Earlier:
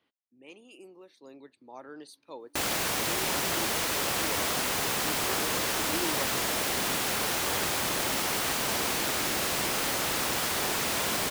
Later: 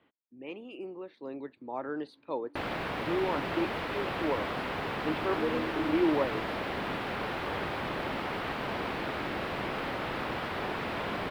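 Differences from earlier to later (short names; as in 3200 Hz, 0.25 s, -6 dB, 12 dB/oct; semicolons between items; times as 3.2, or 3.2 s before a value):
speech +10.5 dB; master: add air absorption 440 m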